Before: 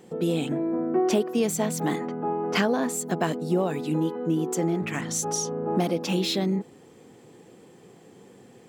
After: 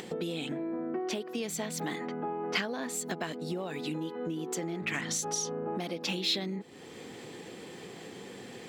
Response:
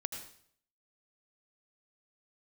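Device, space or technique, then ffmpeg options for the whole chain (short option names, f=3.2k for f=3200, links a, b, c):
upward and downward compression: -af "acompressor=mode=upward:threshold=-43dB:ratio=2.5,acompressor=threshold=-36dB:ratio=6,equalizer=f=125:t=o:w=1:g=-3,equalizer=f=2k:t=o:w=1:g=6,equalizer=f=4k:t=o:w=1:g=8,volume=3dB"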